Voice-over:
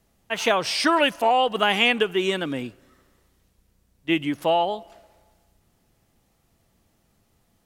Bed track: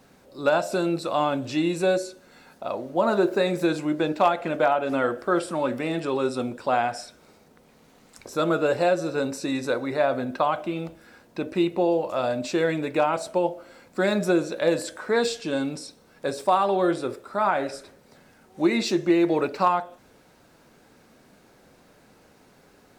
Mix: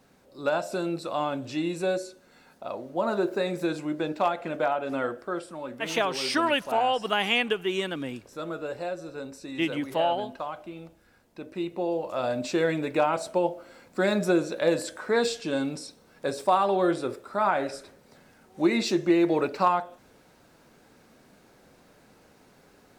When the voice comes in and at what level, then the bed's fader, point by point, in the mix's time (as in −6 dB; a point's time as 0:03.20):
5.50 s, −5.0 dB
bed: 0:05.03 −5 dB
0:05.53 −11.5 dB
0:11.34 −11.5 dB
0:12.39 −1.5 dB